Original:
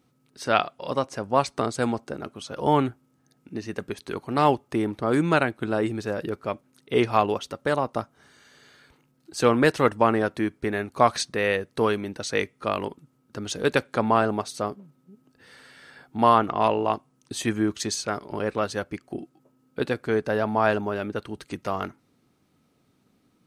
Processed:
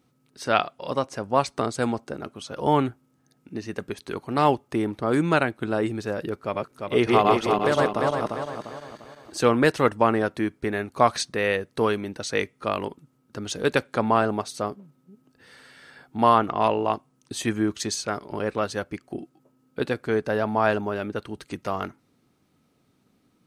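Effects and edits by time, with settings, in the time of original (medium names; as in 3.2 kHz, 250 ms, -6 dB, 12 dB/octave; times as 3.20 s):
6.37–9.38 s: backward echo that repeats 174 ms, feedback 64%, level -0.5 dB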